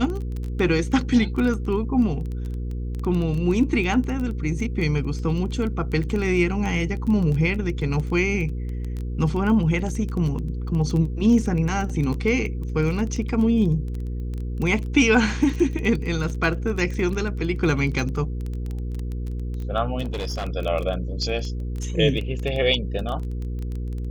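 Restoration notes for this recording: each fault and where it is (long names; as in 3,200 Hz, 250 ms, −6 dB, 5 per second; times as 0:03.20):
surface crackle 15 per second −27 dBFS
mains hum 60 Hz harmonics 8 −28 dBFS
0:20.01–0:20.47: clipping −24 dBFS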